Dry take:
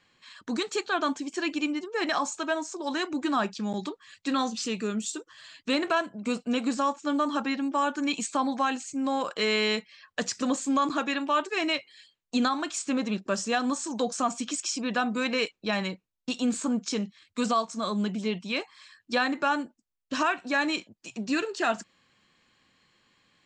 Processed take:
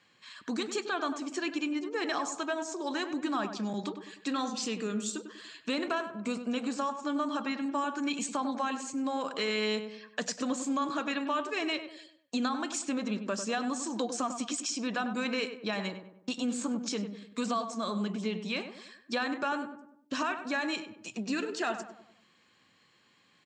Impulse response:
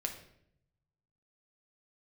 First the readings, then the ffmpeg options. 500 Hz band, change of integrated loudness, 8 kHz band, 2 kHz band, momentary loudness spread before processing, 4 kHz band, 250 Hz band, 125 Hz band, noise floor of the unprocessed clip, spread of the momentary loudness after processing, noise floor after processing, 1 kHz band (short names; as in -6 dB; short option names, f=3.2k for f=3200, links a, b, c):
-4.0 dB, -4.5 dB, -3.0 dB, -5.0 dB, 7 LU, -4.5 dB, -4.0 dB, n/a, -79 dBFS, 7 LU, -66 dBFS, -5.5 dB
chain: -filter_complex "[0:a]highpass=110,acompressor=threshold=-33dB:ratio=2,asplit=2[a][b];[b]adelay=98,lowpass=f=1.6k:p=1,volume=-8dB,asplit=2[c][d];[d]adelay=98,lowpass=f=1.6k:p=1,volume=0.47,asplit=2[e][f];[f]adelay=98,lowpass=f=1.6k:p=1,volume=0.47,asplit=2[g][h];[h]adelay=98,lowpass=f=1.6k:p=1,volume=0.47,asplit=2[i][j];[j]adelay=98,lowpass=f=1.6k:p=1,volume=0.47[k];[a][c][e][g][i][k]amix=inputs=6:normalize=0"